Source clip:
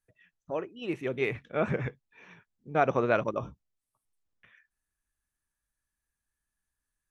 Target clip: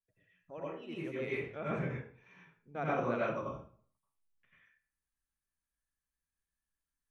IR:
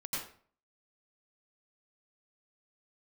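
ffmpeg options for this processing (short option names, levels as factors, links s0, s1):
-filter_complex "[1:a]atrim=start_sample=2205[s0];[0:a][s0]afir=irnorm=-1:irlink=0,volume=0.355"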